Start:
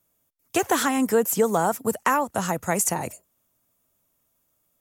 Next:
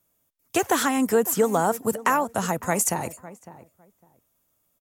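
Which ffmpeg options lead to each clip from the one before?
ffmpeg -i in.wav -filter_complex "[0:a]asplit=2[link_01][link_02];[link_02]adelay=555,lowpass=frequency=1300:poles=1,volume=-16dB,asplit=2[link_03][link_04];[link_04]adelay=555,lowpass=frequency=1300:poles=1,volume=0.19[link_05];[link_01][link_03][link_05]amix=inputs=3:normalize=0" out.wav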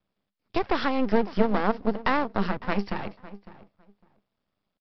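ffmpeg -i in.wav -af "equalizer=frequency=200:width_type=o:width=0.21:gain=12.5,aresample=11025,aeval=exprs='max(val(0),0)':channel_layout=same,aresample=44100" out.wav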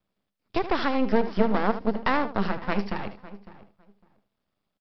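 ffmpeg -i in.wav -af "aecho=1:1:76:0.237" out.wav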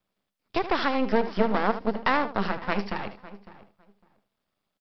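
ffmpeg -i in.wav -af "lowshelf=frequency=410:gain=-5.5,volume=2dB" out.wav

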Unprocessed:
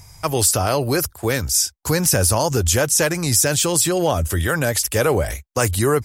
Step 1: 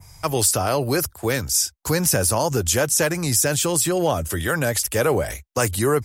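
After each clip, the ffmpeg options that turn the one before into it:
ffmpeg -i in.wav -filter_complex "[0:a]acrossover=split=110|5500[link_01][link_02][link_03];[link_01]acompressor=threshold=-33dB:ratio=6[link_04];[link_04][link_02][link_03]amix=inputs=3:normalize=0,adynamicequalizer=threshold=0.0282:dfrequency=4700:dqfactor=0.82:tfrequency=4700:tqfactor=0.82:attack=5:release=100:ratio=0.375:range=2:mode=cutabove:tftype=bell,volume=-1.5dB" out.wav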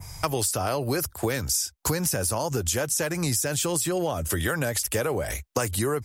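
ffmpeg -i in.wav -af "acompressor=threshold=-28dB:ratio=12,volume=5.5dB" out.wav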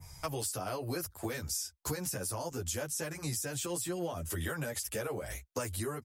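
ffmpeg -i in.wav -filter_complex "[0:a]asplit=2[link_01][link_02];[link_02]adelay=10.1,afreqshift=-0.66[link_03];[link_01][link_03]amix=inputs=2:normalize=1,volume=-7.5dB" out.wav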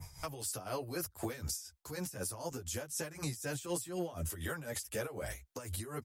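ffmpeg -i in.wav -af "alimiter=level_in=7dB:limit=-24dB:level=0:latency=1:release=240,volume=-7dB,tremolo=f=4:d=0.74,volume=4.5dB" out.wav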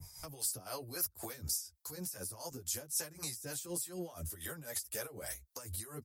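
ffmpeg -i in.wav -filter_complex "[0:a]aexciter=amount=1.4:drive=8.9:freq=4100,acrossover=split=500[link_01][link_02];[link_01]aeval=exprs='val(0)*(1-0.7/2+0.7/2*cos(2*PI*3.5*n/s))':channel_layout=same[link_03];[link_02]aeval=exprs='val(0)*(1-0.7/2-0.7/2*cos(2*PI*3.5*n/s))':channel_layout=same[link_04];[link_03][link_04]amix=inputs=2:normalize=0,volume=-2.5dB" out.wav

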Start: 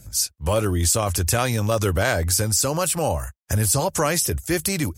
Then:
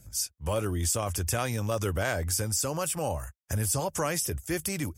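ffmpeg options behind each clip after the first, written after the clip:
ffmpeg -i in.wav -af "bandreject=frequency=4100:width=6,volume=-8dB" out.wav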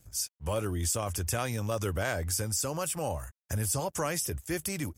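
ffmpeg -i in.wav -af "aeval=exprs='sgn(val(0))*max(abs(val(0))-0.00112,0)':channel_layout=same,volume=-2dB" out.wav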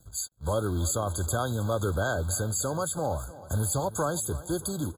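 ffmpeg -i in.wav -filter_complex "[0:a]acrossover=split=440|990[link_01][link_02][link_03];[link_01]acrusher=bits=4:mode=log:mix=0:aa=0.000001[link_04];[link_04][link_02][link_03]amix=inputs=3:normalize=0,aecho=1:1:316|632|948|1264:0.133|0.0693|0.0361|0.0188,afftfilt=real='re*eq(mod(floor(b*sr/1024/1600),2),0)':imag='im*eq(mod(floor(b*sr/1024/1600),2),0)':win_size=1024:overlap=0.75,volume=3.5dB" out.wav

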